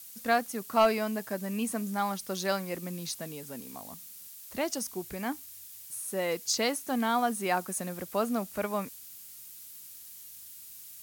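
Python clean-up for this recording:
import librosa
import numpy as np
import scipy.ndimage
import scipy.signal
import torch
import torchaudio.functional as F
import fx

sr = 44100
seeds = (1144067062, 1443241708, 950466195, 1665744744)

y = fx.fix_declip(x, sr, threshold_db=-15.5)
y = fx.noise_reduce(y, sr, print_start_s=9.96, print_end_s=10.46, reduce_db=29.0)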